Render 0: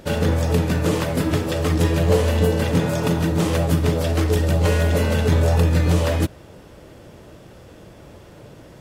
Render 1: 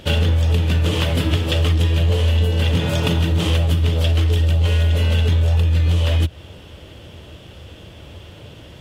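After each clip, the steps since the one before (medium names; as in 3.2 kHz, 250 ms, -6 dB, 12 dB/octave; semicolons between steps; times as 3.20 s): peaking EQ 79 Hz +12 dB 0.75 oct; compression, threshold -14 dBFS, peak gain reduction 10.5 dB; peaking EQ 3.1 kHz +14.5 dB 0.7 oct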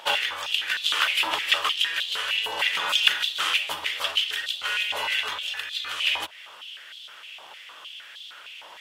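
step-sequenced high-pass 6.5 Hz 930–3600 Hz; trim -1 dB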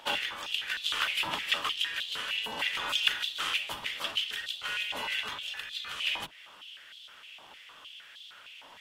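octave divider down 1 oct, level +4 dB; trim -7 dB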